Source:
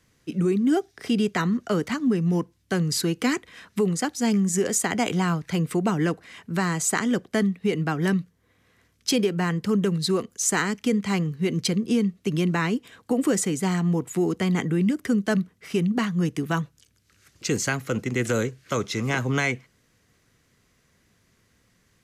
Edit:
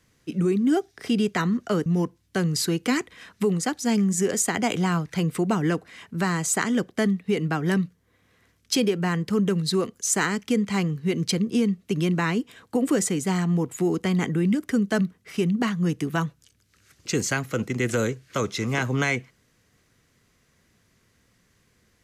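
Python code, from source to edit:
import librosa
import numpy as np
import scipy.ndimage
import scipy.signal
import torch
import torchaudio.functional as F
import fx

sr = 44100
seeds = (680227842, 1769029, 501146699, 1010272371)

y = fx.edit(x, sr, fx.cut(start_s=1.86, length_s=0.36), tone=tone)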